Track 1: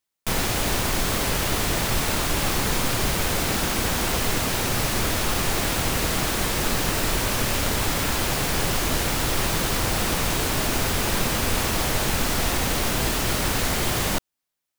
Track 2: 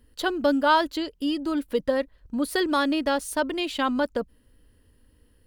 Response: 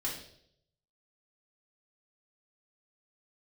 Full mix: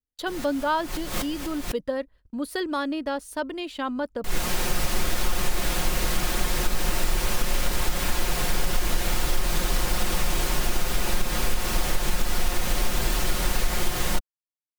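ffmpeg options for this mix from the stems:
-filter_complex "[0:a]asubboost=boost=3.5:cutoff=53,aecho=1:1:5.6:0.57,acrusher=bits=6:mix=0:aa=0.5,volume=-4dB,asplit=3[a][b][c];[a]atrim=end=1.72,asetpts=PTS-STARTPTS,afade=t=out:st=1.716:d=0.004:c=hsin[d];[b]atrim=start=1.72:end=4.24,asetpts=PTS-STARTPTS,volume=0[e];[c]atrim=start=4.24,asetpts=PTS-STARTPTS,afade=t=in:d=0.004:c=hsin[f];[d][e][f]concat=n=3:v=0:a=1[g];[1:a]agate=range=-32dB:threshold=-47dB:ratio=16:detection=peak,adynamicequalizer=threshold=0.0141:dfrequency=1800:dqfactor=0.7:tfrequency=1800:tqfactor=0.7:attack=5:release=100:ratio=0.375:range=3:mode=cutabove:tftype=highshelf,volume=-4dB,asplit=2[h][i];[i]apad=whole_len=652172[j];[g][j]sidechaincompress=threshold=-45dB:ratio=4:attack=5.1:release=121[k];[k][h]amix=inputs=2:normalize=0,acompressor=threshold=-16dB:ratio=6"

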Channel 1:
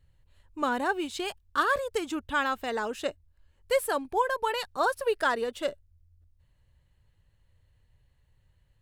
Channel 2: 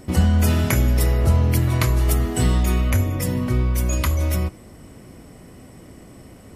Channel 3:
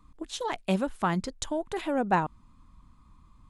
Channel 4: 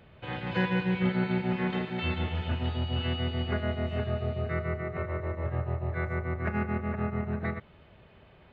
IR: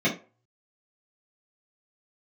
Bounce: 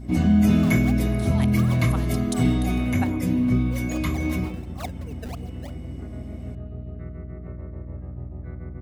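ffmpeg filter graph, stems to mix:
-filter_complex "[0:a]asplit=3[a][b][c];[a]bandpass=f=730:t=q:w=8,volume=0dB[d];[b]bandpass=f=1.09k:t=q:w=8,volume=-6dB[e];[c]bandpass=f=2.44k:t=q:w=8,volume=-9dB[f];[d][e][f]amix=inputs=3:normalize=0,acrusher=samples=23:mix=1:aa=0.000001:lfo=1:lforange=36.8:lforate=2.9,volume=-4.5dB,asplit=2[g][h];[1:a]volume=-10dB,asplit=2[i][j];[j]volume=-7.5dB[k];[2:a]equalizer=f=5.5k:t=o:w=2.2:g=13.5,aexciter=amount=13.4:drive=7.6:freq=10k,adelay=900,volume=-7dB[l];[3:a]acompressor=threshold=-30dB:ratio=6,tiltshelf=f=710:g=8.5,adelay=2500,volume=-10.5dB[m];[h]apad=whole_len=193927[n];[l][n]sidechaincompress=threshold=-59dB:ratio=8:attack=16:release=101[o];[4:a]atrim=start_sample=2205[p];[k][p]afir=irnorm=-1:irlink=0[q];[g][i][o][m][q]amix=inputs=5:normalize=0,aeval=exprs='val(0)+0.0158*(sin(2*PI*60*n/s)+sin(2*PI*2*60*n/s)/2+sin(2*PI*3*60*n/s)/3+sin(2*PI*4*60*n/s)/4+sin(2*PI*5*60*n/s)/5)':c=same"

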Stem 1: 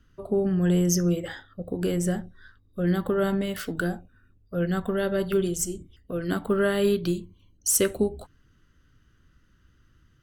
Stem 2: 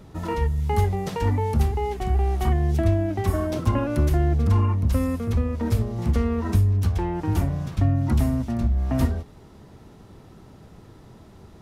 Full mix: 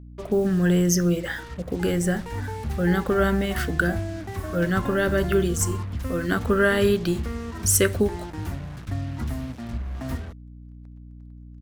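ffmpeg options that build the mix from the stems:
-filter_complex "[0:a]volume=2dB[a];[1:a]adelay=1100,volume=-9dB,afade=t=in:st=2.14:d=0.24:silence=0.375837[b];[a][b]amix=inputs=2:normalize=0,equalizer=f=1.7k:t=o:w=1:g=7,acrusher=bits=6:mix=0:aa=0.5,aeval=exprs='val(0)+0.00891*(sin(2*PI*60*n/s)+sin(2*PI*2*60*n/s)/2+sin(2*PI*3*60*n/s)/3+sin(2*PI*4*60*n/s)/4+sin(2*PI*5*60*n/s)/5)':c=same"

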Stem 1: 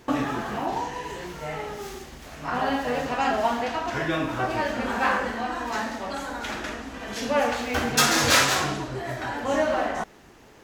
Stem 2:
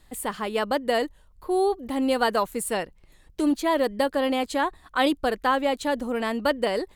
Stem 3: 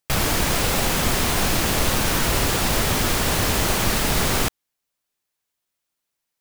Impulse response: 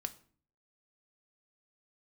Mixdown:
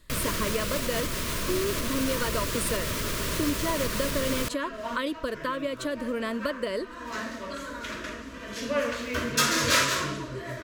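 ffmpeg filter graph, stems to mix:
-filter_complex "[0:a]adelay=1400,volume=-3.5dB[a];[1:a]acompressor=threshold=-26dB:ratio=6,volume=0dB,asplit=2[b][c];[2:a]alimiter=limit=-16.5dB:level=0:latency=1:release=392,volume=-3dB[d];[c]apad=whole_len=530569[e];[a][e]sidechaincompress=threshold=-37dB:ratio=12:attack=9.9:release=427[f];[f][b][d]amix=inputs=3:normalize=0,asuperstop=centerf=790:order=8:qfactor=3.3"

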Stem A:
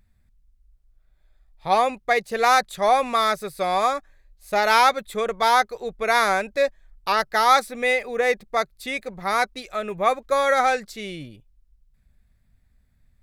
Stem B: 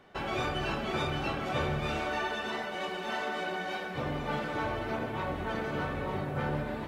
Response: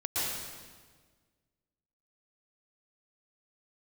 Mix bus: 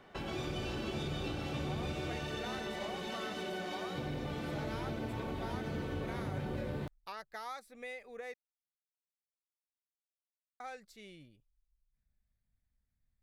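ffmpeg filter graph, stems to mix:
-filter_complex "[0:a]acompressor=threshold=-23dB:ratio=2.5,volume=-19.5dB,asplit=3[a][b][c];[a]atrim=end=8.34,asetpts=PTS-STARTPTS,afade=t=out:st=8.336:d=0.004:c=hsin[d];[b]atrim=start=8.34:end=10.6,asetpts=PTS-STARTPTS,volume=0[e];[c]atrim=start=10.6,asetpts=PTS-STARTPTS,afade=t=in:d=0.004:c=hsin[f];[d][e][f]concat=n=3:v=0:a=1[g];[1:a]acrossover=split=450|3000[h][i][j];[i]acompressor=threshold=-46dB:ratio=6[k];[h][k][j]amix=inputs=3:normalize=0,volume=-3.5dB,asplit=2[l][m];[m]volume=-4.5dB[n];[2:a]atrim=start_sample=2205[o];[n][o]afir=irnorm=-1:irlink=0[p];[g][l][p]amix=inputs=3:normalize=0,acompressor=threshold=-38dB:ratio=2"

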